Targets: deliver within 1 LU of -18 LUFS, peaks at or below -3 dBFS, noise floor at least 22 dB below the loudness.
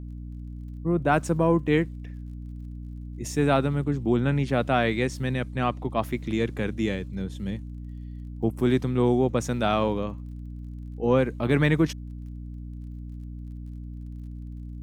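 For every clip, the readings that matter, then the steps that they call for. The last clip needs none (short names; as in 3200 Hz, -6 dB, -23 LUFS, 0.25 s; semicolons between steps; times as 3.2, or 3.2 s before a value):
ticks 35/s; hum 60 Hz; harmonics up to 300 Hz; hum level -35 dBFS; loudness -25.5 LUFS; peak -8.0 dBFS; loudness target -18.0 LUFS
-> de-click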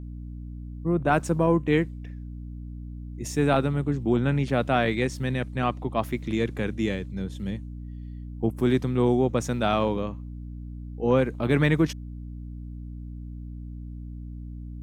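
ticks 0.13/s; hum 60 Hz; harmonics up to 300 Hz; hum level -35 dBFS
-> notches 60/120/180/240/300 Hz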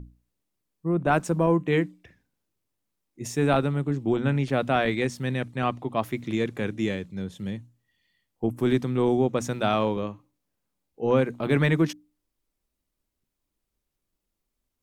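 hum none; loudness -26.0 LUFS; peak -9.0 dBFS; loudness target -18.0 LUFS
-> gain +8 dB; limiter -3 dBFS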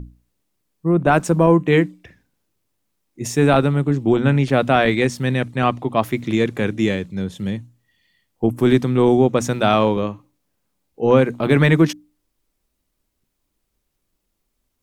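loudness -18.0 LUFS; peak -3.0 dBFS; noise floor -74 dBFS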